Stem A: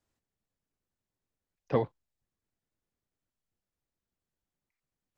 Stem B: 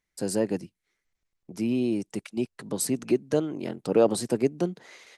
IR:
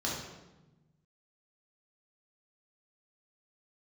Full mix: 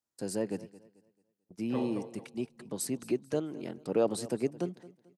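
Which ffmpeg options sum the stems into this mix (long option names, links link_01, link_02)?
-filter_complex "[0:a]highpass=frequency=570:poles=1,equalizer=frequency=2400:width=0.55:gain=-9,volume=-4dB,asplit=3[link_01][link_02][link_03];[link_02]volume=-9.5dB[link_04];[link_03]volume=-6dB[link_05];[1:a]agate=range=-39dB:threshold=-41dB:ratio=16:detection=peak,volume=-7dB,asplit=2[link_06][link_07];[link_07]volume=-19dB[link_08];[2:a]atrim=start_sample=2205[link_09];[link_04][link_09]afir=irnorm=-1:irlink=0[link_10];[link_05][link_08]amix=inputs=2:normalize=0,aecho=0:1:220|440|660|880|1100:1|0.32|0.102|0.0328|0.0105[link_11];[link_01][link_06][link_10][link_11]amix=inputs=4:normalize=0"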